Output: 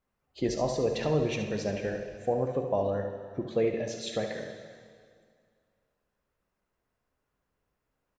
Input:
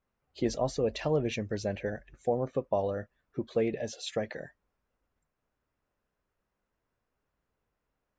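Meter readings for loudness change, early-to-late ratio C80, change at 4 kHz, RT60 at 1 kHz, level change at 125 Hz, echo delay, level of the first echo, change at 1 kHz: +2.0 dB, 7.5 dB, +1.5 dB, 2.1 s, +2.0 dB, 71 ms, -9.0 dB, +1.5 dB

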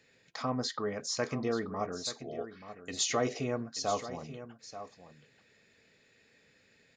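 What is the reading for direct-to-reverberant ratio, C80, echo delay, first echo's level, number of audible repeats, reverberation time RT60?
no reverb, no reverb, 883 ms, -12.5 dB, 1, no reverb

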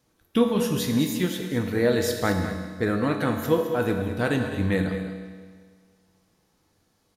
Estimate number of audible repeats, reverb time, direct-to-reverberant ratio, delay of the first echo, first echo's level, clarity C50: 1, 1.7 s, 2.5 dB, 209 ms, -11.5 dB, 4.5 dB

